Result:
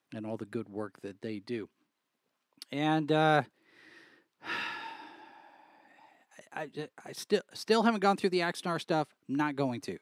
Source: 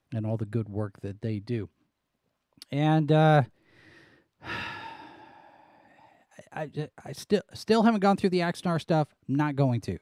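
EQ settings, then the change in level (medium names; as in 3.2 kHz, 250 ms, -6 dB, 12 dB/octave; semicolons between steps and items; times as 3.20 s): high-pass 300 Hz 12 dB/octave; peaking EQ 610 Hz -5.5 dB 0.74 oct; 0.0 dB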